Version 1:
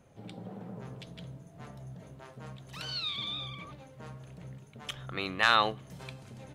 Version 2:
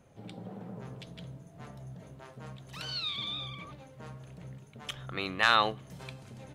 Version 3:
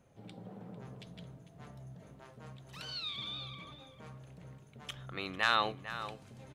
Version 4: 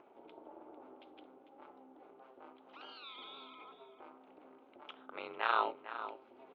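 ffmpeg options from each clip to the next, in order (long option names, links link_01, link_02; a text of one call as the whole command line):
ffmpeg -i in.wav -af anull out.wav
ffmpeg -i in.wav -filter_complex "[0:a]asplit=2[link_01][link_02];[link_02]adelay=449,volume=-11dB,highshelf=frequency=4000:gain=-10.1[link_03];[link_01][link_03]amix=inputs=2:normalize=0,volume=-5dB" out.wav
ffmpeg -i in.wav -af "aeval=exprs='val(0)*sin(2*PI*130*n/s)':channel_layout=same,highpass=380,equalizer=frequency=390:width_type=q:width=4:gain=7,equalizer=frequency=550:width_type=q:width=4:gain=3,equalizer=frequency=850:width_type=q:width=4:gain=8,equalizer=frequency=1300:width_type=q:width=4:gain=5,equalizer=frequency=1800:width_type=q:width=4:gain=-8,lowpass=frequency=3000:width=0.5412,lowpass=frequency=3000:width=1.3066,acompressor=mode=upward:threshold=-52dB:ratio=2.5,volume=-1.5dB" out.wav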